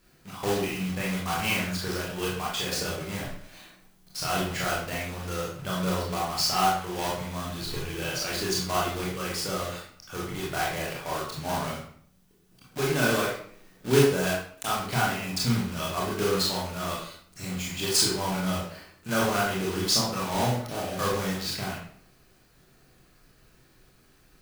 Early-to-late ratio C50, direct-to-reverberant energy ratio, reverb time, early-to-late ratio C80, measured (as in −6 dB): 2.0 dB, −5.5 dB, 0.55 s, 6.5 dB